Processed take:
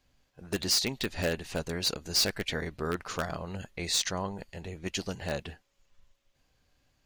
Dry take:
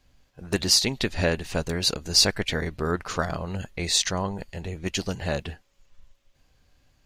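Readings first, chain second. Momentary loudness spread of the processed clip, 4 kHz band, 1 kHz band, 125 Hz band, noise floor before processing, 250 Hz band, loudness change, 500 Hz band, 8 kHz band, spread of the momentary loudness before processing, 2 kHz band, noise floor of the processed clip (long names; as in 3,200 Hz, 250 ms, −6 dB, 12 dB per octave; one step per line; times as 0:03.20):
12 LU, −6.5 dB, −5.5 dB, −7.5 dB, −65 dBFS, −6.5 dB, −6.0 dB, −5.5 dB, −6.5 dB, 13 LU, −5.5 dB, −73 dBFS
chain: in parallel at −6 dB: wrap-around overflow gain 13.5 dB
on the sum: low-shelf EQ 110 Hz −5.5 dB
level −8.5 dB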